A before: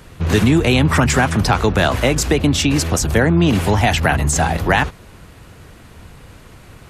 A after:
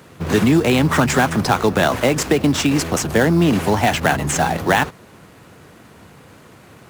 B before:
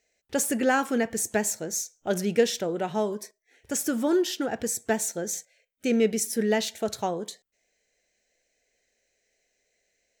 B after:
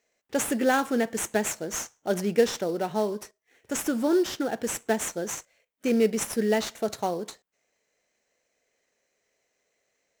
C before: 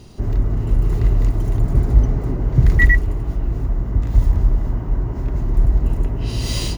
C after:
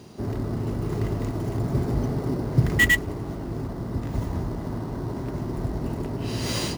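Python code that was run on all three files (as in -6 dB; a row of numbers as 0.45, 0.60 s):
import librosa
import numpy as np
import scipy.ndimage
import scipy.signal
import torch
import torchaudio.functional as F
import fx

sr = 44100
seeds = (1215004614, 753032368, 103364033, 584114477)

p1 = scipy.signal.sosfilt(scipy.signal.butter(2, 150.0, 'highpass', fs=sr, output='sos'), x)
p2 = fx.sample_hold(p1, sr, seeds[0], rate_hz=5000.0, jitter_pct=20)
p3 = p1 + F.gain(torch.from_numpy(p2), -5.5).numpy()
y = F.gain(torch.from_numpy(p3), -3.0).numpy()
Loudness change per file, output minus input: -1.5, -0.5, -7.0 LU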